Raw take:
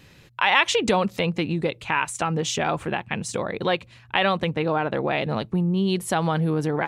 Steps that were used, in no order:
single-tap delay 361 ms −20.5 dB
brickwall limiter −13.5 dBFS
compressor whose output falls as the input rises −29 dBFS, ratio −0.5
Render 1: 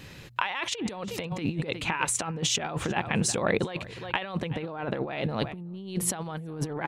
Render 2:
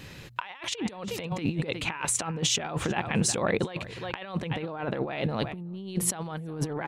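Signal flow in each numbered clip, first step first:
brickwall limiter, then single-tap delay, then compressor whose output falls as the input rises
single-tap delay, then compressor whose output falls as the input rises, then brickwall limiter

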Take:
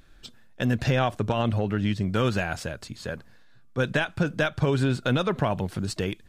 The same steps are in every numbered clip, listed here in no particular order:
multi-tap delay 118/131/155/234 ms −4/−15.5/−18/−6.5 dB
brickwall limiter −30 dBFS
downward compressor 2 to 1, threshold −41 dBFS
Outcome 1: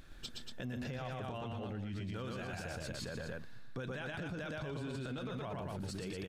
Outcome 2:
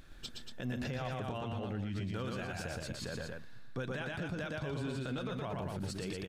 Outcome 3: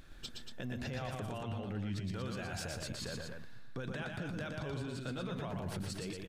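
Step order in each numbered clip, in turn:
multi-tap delay, then brickwall limiter, then downward compressor
downward compressor, then multi-tap delay, then brickwall limiter
brickwall limiter, then downward compressor, then multi-tap delay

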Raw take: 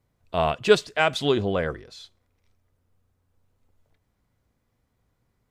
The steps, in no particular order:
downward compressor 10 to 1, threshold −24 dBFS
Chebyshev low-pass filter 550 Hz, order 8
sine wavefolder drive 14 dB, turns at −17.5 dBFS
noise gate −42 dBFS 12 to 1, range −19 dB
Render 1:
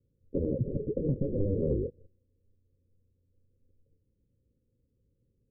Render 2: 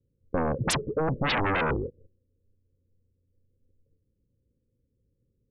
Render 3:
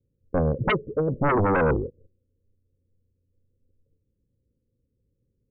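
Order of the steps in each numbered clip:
noise gate, then sine wavefolder, then Chebyshev low-pass filter, then downward compressor
noise gate, then Chebyshev low-pass filter, then sine wavefolder, then downward compressor
noise gate, then downward compressor, then Chebyshev low-pass filter, then sine wavefolder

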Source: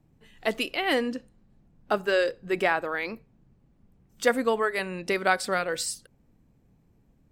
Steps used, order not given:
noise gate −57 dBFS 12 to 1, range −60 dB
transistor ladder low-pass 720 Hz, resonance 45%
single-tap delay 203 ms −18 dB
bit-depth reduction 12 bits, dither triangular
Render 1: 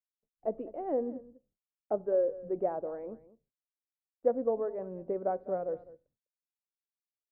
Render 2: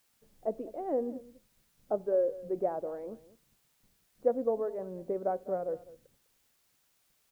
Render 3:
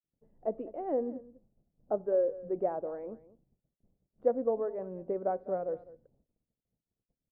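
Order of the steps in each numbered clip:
bit-depth reduction, then transistor ladder low-pass, then noise gate, then single-tap delay
noise gate, then transistor ladder low-pass, then bit-depth reduction, then single-tap delay
single-tap delay, then bit-depth reduction, then noise gate, then transistor ladder low-pass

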